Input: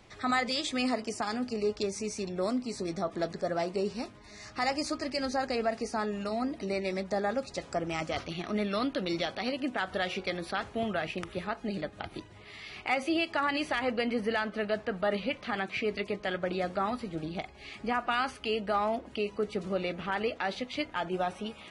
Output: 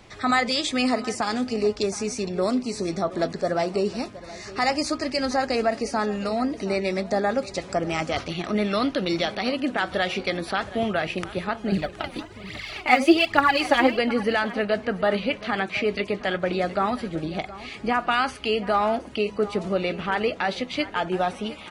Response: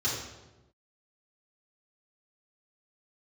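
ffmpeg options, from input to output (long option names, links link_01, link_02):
-filter_complex "[0:a]asettb=1/sr,asplit=3[link_01][link_02][link_03];[link_01]atrim=end=11.724[link_04];[link_02]atrim=start=11.72:end=13.99,asetpts=PTS-STARTPTS,afade=type=in:duration=0.004:curve=qsin,afade=type=out:start_time=2.266:duration=0.004:curve=qsin,aphaser=in_gain=1:out_gain=1:delay=4.3:decay=0.7:speed=1.2:type=triangular[link_05];[link_03]atrim=start=13.986[link_06];[link_04][link_05]acrossfade=duration=0.004:curve1=hsin:curve2=qsin[link_07];[link_07][link_06]acrossfade=duration=0.004:curve1=qsin:curve2=hsin,aecho=1:1:719:0.141,volume=7dB"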